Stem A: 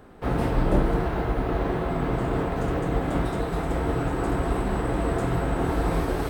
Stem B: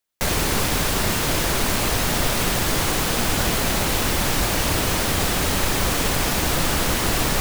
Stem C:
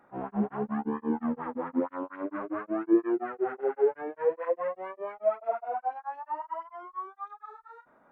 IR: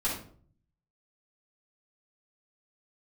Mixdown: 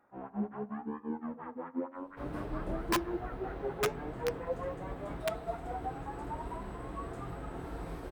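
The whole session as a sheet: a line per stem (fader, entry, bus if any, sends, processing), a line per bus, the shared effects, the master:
-12.5 dB, 1.95 s, no send, none
mute
-4.0 dB, 0.00 s, send -23 dB, peaking EQ 63 Hz +7 dB 0.94 oct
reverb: on, RT60 0.50 s, pre-delay 3 ms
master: integer overflow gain 19 dB; flange 0.7 Hz, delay 2.5 ms, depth 4.9 ms, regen -89%

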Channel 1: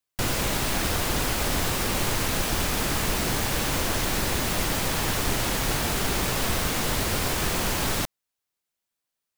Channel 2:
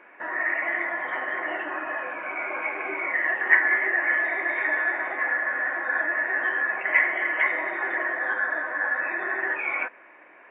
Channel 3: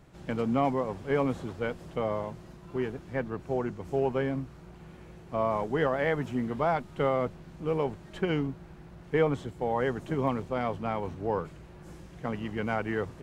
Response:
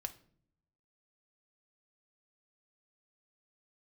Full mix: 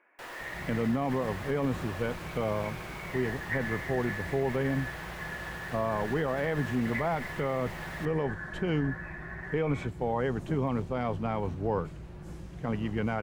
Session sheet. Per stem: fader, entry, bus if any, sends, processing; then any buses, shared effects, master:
-13.5 dB, 0.00 s, no send, three-band isolator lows -21 dB, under 370 Hz, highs -12 dB, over 3.1 kHz
-15.5 dB, 0.00 s, no send, none
0.0 dB, 0.40 s, no send, bass shelf 190 Hz +7 dB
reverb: none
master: peak limiter -20 dBFS, peak gain reduction 8 dB

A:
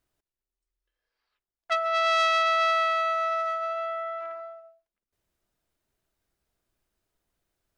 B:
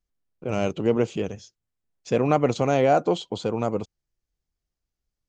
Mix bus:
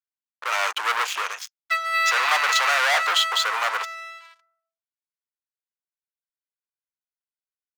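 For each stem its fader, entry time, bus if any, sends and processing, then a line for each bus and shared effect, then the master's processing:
-11.0 dB, 0.00 s, no send, comb 2 ms, depth 97%
+1.5 dB, 0.00 s, no send, waveshaping leveller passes 1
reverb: none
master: waveshaping leveller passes 5; high-pass 1.1 kHz 24 dB/octave; treble shelf 2.6 kHz -8 dB

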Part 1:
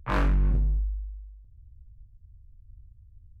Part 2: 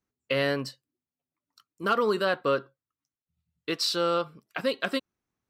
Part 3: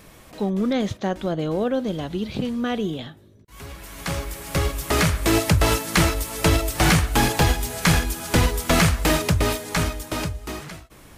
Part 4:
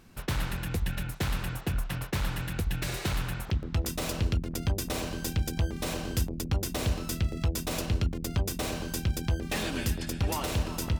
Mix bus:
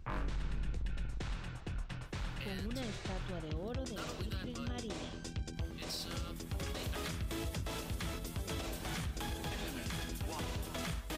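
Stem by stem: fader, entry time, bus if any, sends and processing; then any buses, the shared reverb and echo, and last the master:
-2.5 dB, 0.00 s, no send, octave divider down 2 oct, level -1 dB; compression, threshold -28 dBFS, peak gain reduction 11.5 dB
-7.5 dB, 2.10 s, no send, differentiator
-19.5 dB, 2.05 s, no send, peaking EQ 3.4 kHz +7.5 dB 0.21 oct
-10.5 dB, 0.00 s, no send, low-pass 7.9 kHz 24 dB/octave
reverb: none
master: peak limiter -30.5 dBFS, peak gain reduction 7.5 dB

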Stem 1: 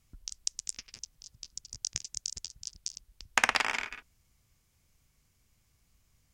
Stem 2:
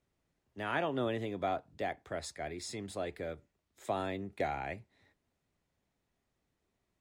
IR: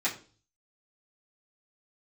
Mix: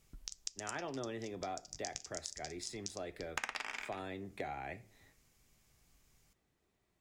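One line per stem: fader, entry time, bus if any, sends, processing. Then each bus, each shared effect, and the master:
0.0 dB, 0.00 s, send -18 dB, peaking EQ 83 Hz -7 dB
+1.0 dB, 0.00 s, send -17 dB, none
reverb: on, RT60 0.40 s, pre-delay 3 ms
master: compression 2.5:1, threshold -43 dBFS, peak gain reduction 17 dB

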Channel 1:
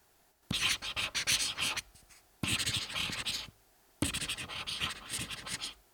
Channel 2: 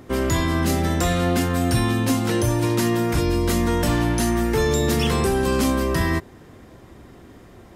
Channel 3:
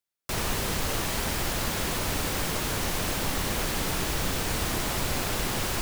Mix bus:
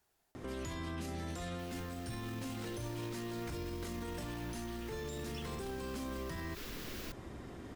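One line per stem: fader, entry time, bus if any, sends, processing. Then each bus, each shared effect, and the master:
-11.0 dB, 0.00 s, no send, peak limiter -28 dBFS, peak gain reduction 12 dB
-3.0 dB, 0.35 s, no send, low-pass 11 kHz 12 dB/octave; compression 2.5:1, threshold -30 dBFS, peak gain reduction 10 dB
-13.5 dB, 1.30 s, no send, peaking EQ 8.8 kHz -9 dB 0.72 oct; static phaser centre 310 Hz, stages 4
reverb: none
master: peak limiter -33.5 dBFS, peak gain reduction 12.5 dB

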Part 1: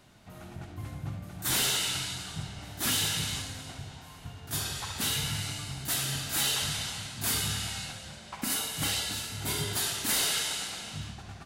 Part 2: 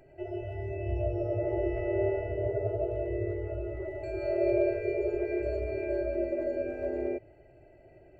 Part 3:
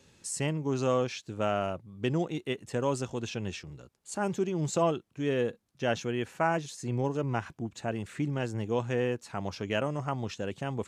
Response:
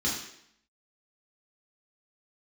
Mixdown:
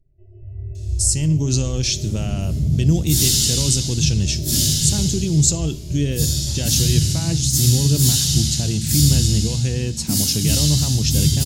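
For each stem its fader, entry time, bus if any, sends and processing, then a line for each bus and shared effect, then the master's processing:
-7.0 dB, 1.65 s, send -5 dB, bass shelf 340 Hz +9.5 dB
-15.0 dB, 0.00 s, no send, tilt EQ -4 dB/octave
+1.0 dB, 0.75 s, send -22.5 dB, peak limiter -24.5 dBFS, peak gain reduction 10.5 dB; level rider gain up to 7 dB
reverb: on, RT60 0.70 s, pre-delay 3 ms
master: FFT filter 140 Hz 0 dB, 620 Hz -17 dB, 1.3 kHz -21 dB, 5.1 kHz +6 dB; level rider gain up to 10.5 dB

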